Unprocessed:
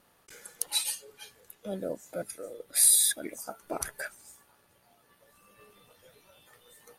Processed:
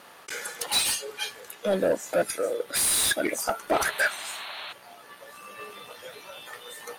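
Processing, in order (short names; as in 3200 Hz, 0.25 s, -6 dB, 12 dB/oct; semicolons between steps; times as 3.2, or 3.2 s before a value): overdrive pedal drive 27 dB, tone 3800 Hz, clips at -10 dBFS; painted sound noise, 3.73–4.73, 570–4400 Hz -37 dBFS; gain -1.5 dB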